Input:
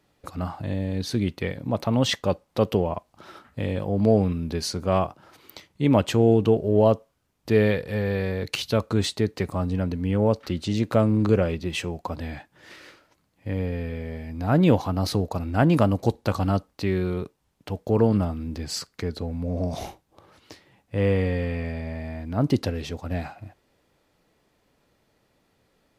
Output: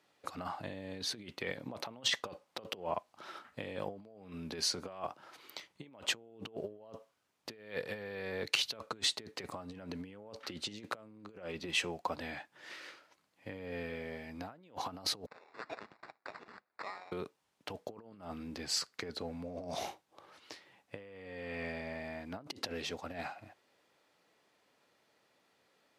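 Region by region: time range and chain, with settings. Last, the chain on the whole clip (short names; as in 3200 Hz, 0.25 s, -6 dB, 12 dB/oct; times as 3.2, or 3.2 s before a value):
15.26–17.12 steep high-pass 1800 Hz 72 dB/oct + sample-rate reducer 3100 Hz + air absorption 170 m
whole clip: low shelf 130 Hz +5.5 dB; negative-ratio compressor -26 dBFS, ratio -0.5; weighting filter A; gain -7.5 dB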